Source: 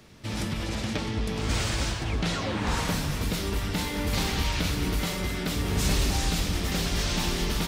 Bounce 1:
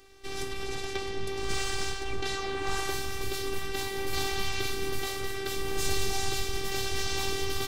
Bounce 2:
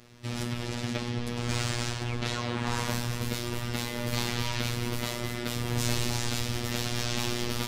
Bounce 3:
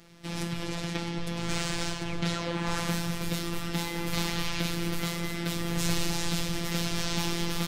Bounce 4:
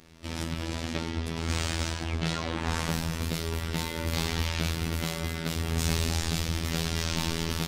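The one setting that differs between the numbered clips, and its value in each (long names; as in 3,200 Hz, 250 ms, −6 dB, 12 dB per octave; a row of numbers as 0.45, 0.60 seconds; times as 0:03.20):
phases set to zero, frequency: 390, 120, 170, 82 Hertz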